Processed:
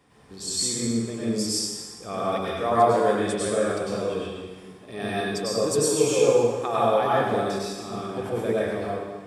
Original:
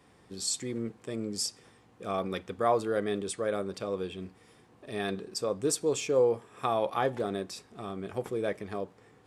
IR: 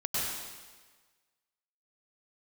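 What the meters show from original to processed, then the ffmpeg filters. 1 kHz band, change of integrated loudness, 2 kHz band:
+9.0 dB, +7.5 dB, +8.0 dB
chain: -filter_complex "[1:a]atrim=start_sample=2205[a];[0:a][a]afir=irnorm=-1:irlink=0"

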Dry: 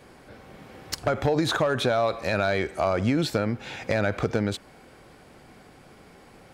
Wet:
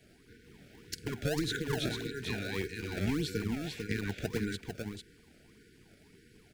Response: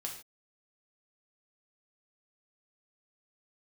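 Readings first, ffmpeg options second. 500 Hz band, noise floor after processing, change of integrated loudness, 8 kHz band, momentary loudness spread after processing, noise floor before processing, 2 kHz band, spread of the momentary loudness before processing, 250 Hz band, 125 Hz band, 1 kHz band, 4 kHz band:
-13.0 dB, -62 dBFS, -10.0 dB, -5.0 dB, 9 LU, -52 dBFS, -8.5 dB, 7 LU, -7.0 dB, -7.0 dB, -17.5 dB, -6.5 dB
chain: -filter_complex "[0:a]tremolo=f=300:d=0.667,aecho=1:1:447:0.531,afftfilt=real='re*(1-between(b*sr/4096,490,1400))':imag='im*(1-between(b*sr/4096,490,1400))':win_size=4096:overlap=0.75,acrossover=split=290|1500|3300[a][b][c][d];[b]acrusher=samples=25:mix=1:aa=0.000001:lfo=1:lforange=40:lforate=1.7[e];[a][e][c][d]amix=inputs=4:normalize=0,volume=-5dB"

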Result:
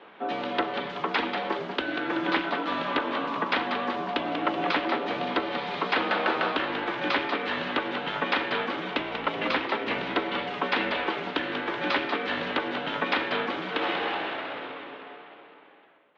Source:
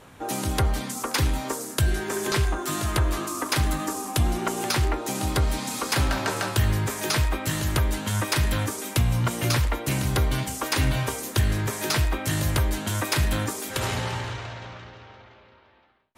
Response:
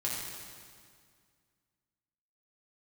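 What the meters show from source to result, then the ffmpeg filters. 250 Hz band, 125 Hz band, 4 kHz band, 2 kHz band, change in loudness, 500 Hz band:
-1.5 dB, -21.5 dB, -1.5 dB, +2.5 dB, -2.5 dB, +1.5 dB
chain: -filter_complex "[0:a]asplit=7[a][b][c][d][e][f][g];[b]adelay=189,afreqshift=-150,volume=-7dB[h];[c]adelay=378,afreqshift=-300,volume=-12.7dB[i];[d]adelay=567,afreqshift=-450,volume=-18.4dB[j];[e]adelay=756,afreqshift=-600,volume=-24dB[k];[f]adelay=945,afreqshift=-750,volume=-29.7dB[l];[g]adelay=1134,afreqshift=-900,volume=-35.4dB[m];[a][h][i][j][k][l][m]amix=inputs=7:normalize=0,highpass=f=350:t=q:w=0.5412,highpass=f=350:t=q:w=1.307,lowpass=f=3.6k:t=q:w=0.5176,lowpass=f=3.6k:t=q:w=0.7071,lowpass=f=3.6k:t=q:w=1.932,afreqshift=-65,volume=2dB"

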